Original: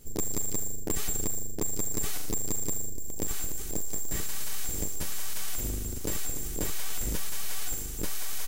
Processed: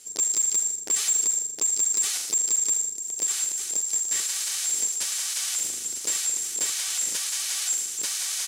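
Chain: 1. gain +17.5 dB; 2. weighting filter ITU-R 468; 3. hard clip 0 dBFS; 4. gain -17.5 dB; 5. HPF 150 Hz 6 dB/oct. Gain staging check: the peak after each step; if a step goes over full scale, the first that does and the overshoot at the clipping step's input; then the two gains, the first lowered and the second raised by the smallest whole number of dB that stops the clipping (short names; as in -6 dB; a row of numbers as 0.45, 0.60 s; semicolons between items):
-4.0, +8.0, 0.0, -17.5, -17.0 dBFS; step 2, 8.0 dB; step 1 +9.5 dB, step 4 -9.5 dB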